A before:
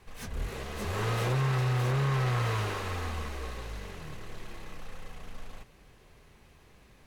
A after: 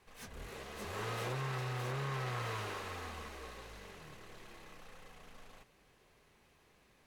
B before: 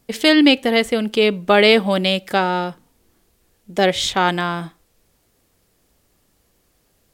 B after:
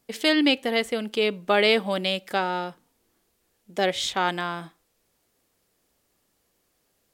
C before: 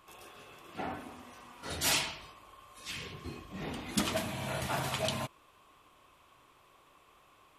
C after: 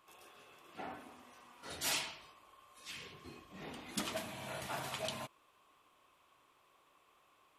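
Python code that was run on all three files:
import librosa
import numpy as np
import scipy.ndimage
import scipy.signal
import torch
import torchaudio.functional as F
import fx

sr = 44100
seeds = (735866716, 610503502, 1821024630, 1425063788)

y = fx.low_shelf(x, sr, hz=150.0, db=-10.5)
y = y * 10.0 ** (-6.5 / 20.0)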